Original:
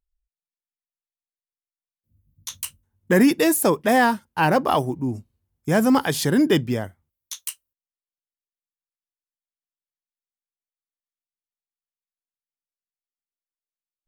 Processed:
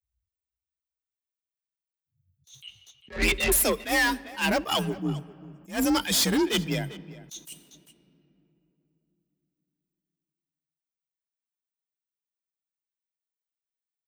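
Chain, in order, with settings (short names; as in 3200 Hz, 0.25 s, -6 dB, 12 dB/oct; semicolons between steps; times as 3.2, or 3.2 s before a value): per-bin expansion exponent 1.5; 2.62–3.52 monotone LPC vocoder at 8 kHz 180 Hz; resonant high shelf 1600 Hz +11.5 dB, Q 1.5; in parallel at -2 dB: compressor, threshold -26 dBFS, peak gain reduction 16 dB; on the sum: soft clip -20 dBFS, distortion -5 dB; frequency shift +42 Hz; outdoor echo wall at 68 m, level -18 dB; on a send at -20.5 dB: reverb RT60 3.1 s, pre-delay 3 ms; on the sum: attack slew limiter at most 200 dB/s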